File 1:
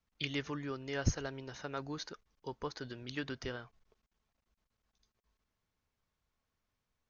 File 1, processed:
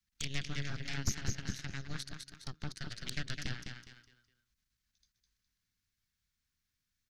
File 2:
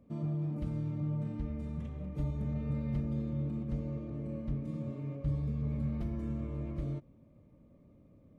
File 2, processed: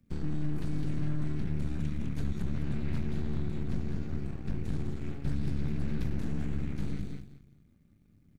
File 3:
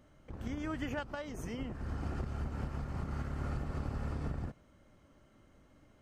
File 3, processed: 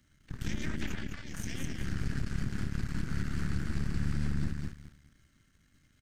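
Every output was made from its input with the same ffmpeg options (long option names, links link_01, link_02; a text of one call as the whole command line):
ffmpeg -i in.wav -filter_complex "[0:a]aecho=1:1:206|412|618|824:0.531|0.186|0.065|0.0228,acrossover=split=100|390[link_01][link_02][link_03];[link_01]acompressor=threshold=-38dB:ratio=4[link_04];[link_02]acompressor=threshold=-35dB:ratio=4[link_05];[link_03]acompressor=threshold=-51dB:ratio=4[link_06];[link_04][link_05][link_06]amix=inputs=3:normalize=0,aeval=exprs='0.075*(cos(1*acos(clip(val(0)/0.075,-1,1)))-cos(1*PI/2))+0.00335*(cos(7*acos(clip(val(0)/0.075,-1,1)))-cos(7*PI/2))+0.0335*(cos(8*acos(clip(val(0)/0.075,-1,1)))-cos(8*PI/2))':channel_layout=same,firequalizer=gain_entry='entry(170,0);entry(530,-17);entry(1000,-12);entry(1600,3);entry(2800,2);entry(4200,7)':delay=0.05:min_phase=1" out.wav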